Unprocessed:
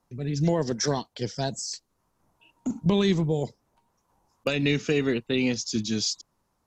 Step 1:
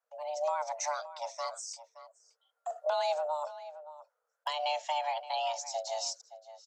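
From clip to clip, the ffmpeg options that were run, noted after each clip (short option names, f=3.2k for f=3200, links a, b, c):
-filter_complex "[0:a]agate=range=-7dB:threshold=-53dB:ratio=16:detection=peak,afreqshift=450,asplit=2[a][b];[b]adelay=571.4,volume=-14dB,highshelf=f=4k:g=-12.9[c];[a][c]amix=inputs=2:normalize=0,volume=-8.5dB"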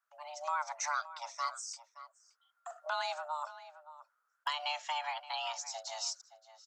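-af "highpass=f=1.3k:t=q:w=2.8,volume=-1.5dB"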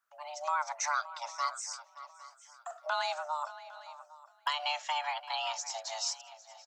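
-af "aecho=1:1:807|1614|2421:0.112|0.0426|0.0162,volume=3dB"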